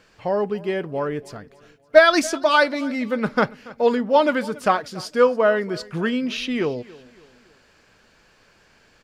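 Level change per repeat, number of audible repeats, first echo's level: -7.5 dB, 2, -21.0 dB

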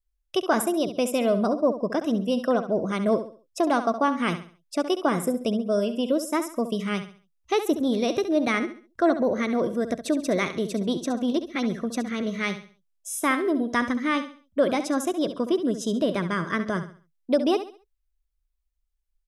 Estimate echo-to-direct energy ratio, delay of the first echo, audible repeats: -10.5 dB, 68 ms, 3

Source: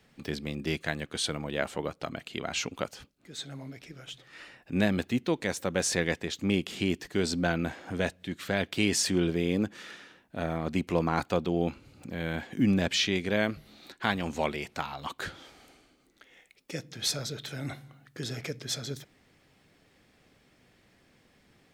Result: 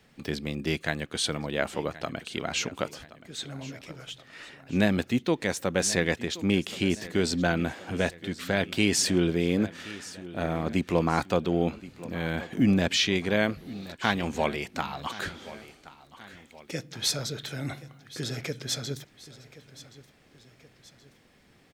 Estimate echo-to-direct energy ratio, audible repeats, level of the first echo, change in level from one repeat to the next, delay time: -16.5 dB, 2, -17.5 dB, -6.0 dB, 1075 ms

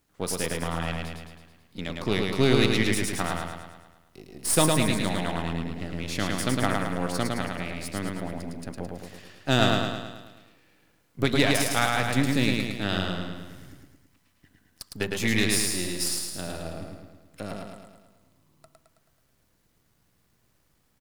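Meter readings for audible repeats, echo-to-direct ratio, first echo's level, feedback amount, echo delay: 7, -1.5 dB, -3.0 dB, 55%, 108 ms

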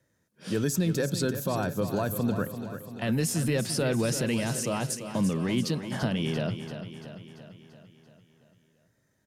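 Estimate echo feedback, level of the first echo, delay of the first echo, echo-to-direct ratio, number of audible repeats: 58%, -10.0 dB, 340 ms, -8.0 dB, 6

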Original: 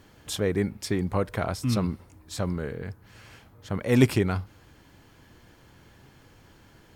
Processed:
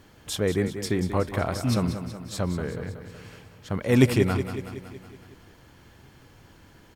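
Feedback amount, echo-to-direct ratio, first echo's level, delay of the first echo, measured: 58%, -8.0 dB, -10.0 dB, 186 ms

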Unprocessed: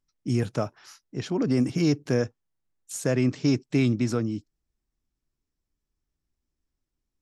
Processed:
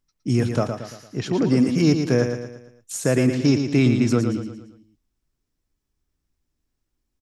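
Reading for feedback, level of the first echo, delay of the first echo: 45%, -7.0 dB, 114 ms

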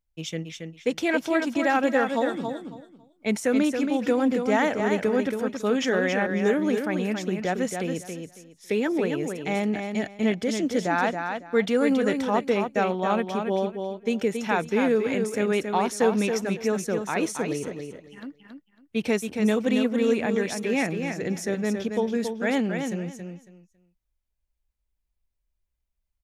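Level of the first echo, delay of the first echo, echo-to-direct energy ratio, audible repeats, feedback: -6.0 dB, 276 ms, -6.0 dB, 3, 21%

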